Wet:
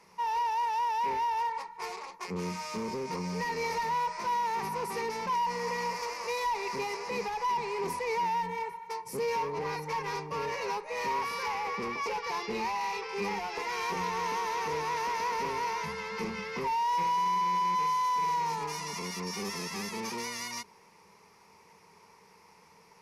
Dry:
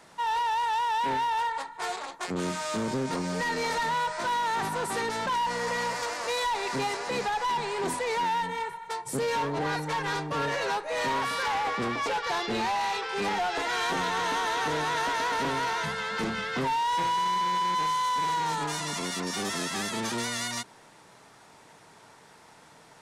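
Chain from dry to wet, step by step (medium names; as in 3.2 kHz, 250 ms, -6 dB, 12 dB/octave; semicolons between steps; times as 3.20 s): rippled EQ curve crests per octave 0.83, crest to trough 12 dB; trim -7 dB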